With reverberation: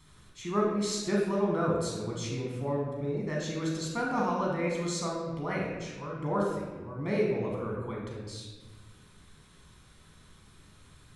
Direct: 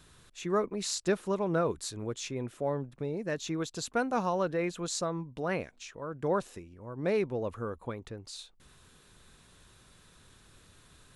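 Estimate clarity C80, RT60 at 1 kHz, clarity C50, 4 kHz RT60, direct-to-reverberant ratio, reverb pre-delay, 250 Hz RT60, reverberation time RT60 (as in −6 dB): 3.5 dB, 1.2 s, 1.0 dB, 0.95 s, −2.5 dB, 14 ms, 2.0 s, 1.3 s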